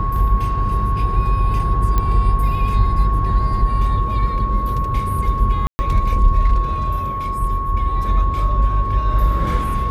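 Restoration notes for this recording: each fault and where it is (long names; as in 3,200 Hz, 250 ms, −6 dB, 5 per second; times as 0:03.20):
whistle 1,100 Hz −22 dBFS
0:01.98: click −7 dBFS
0:05.67–0:05.79: drop-out 120 ms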